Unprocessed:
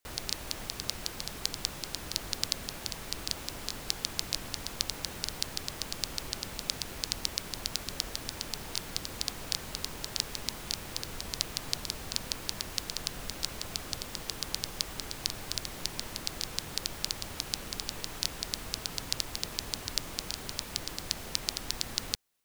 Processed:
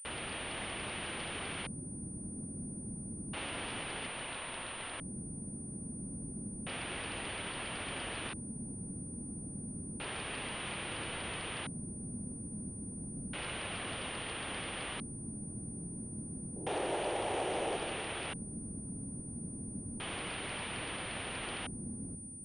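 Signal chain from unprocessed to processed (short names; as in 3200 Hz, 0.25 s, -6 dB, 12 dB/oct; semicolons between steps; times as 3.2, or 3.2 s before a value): CVSD 64 kbps; HPF 130 Hz 6 dB/oct; 4.07–5.01 ring modulator 810 Hz; 16.56–17.76 band shelf 540 Hz +14 dB; soft clip -30.5 dBFS, distortion -21 dB; air absorption 62 m; reverb RT60 2.9 s, pre-delay 0.103 s, DRR 6.5 dB; LFO low-pass square 0.3 Hz 220–3100 Hz; pulse-width modulation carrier 9300 Hz; gain +2.5 dB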